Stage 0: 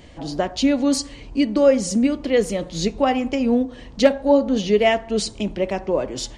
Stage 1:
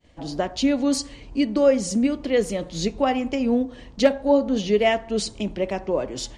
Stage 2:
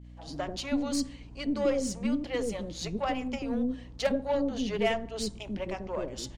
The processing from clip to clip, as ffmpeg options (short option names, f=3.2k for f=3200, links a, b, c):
-af "agate=range=-33dB:threshold=-37dB:ratio=3:detection=peak,volume=-2.5dB"
-filter_complex "[0:a]aeval=exprs='0.447*(cos(1*acos(clip(val(0)/0.447,-1,1)))-cos(1*PI/2))+0.0178*(cos(8*acos(clip(val(0)/0.447,-1,1)))-cos(8*PI/2))':c=same,acrossover=split=460[a][b];[a]adelay=90[c];[c][b]amix=inputs=2:normalize=0,aeval=exprs='val(0)+0.0112*(sin(2*PI*60*n/s)+sin(2*PI*2*60*n/s)/2+sin(2*PI*3*60*n/s)/3+sin(2*PI*4*60*n/s)/4+sin(2*PI*5*60*n/s)/5)':c=same,volume=-7.5dB"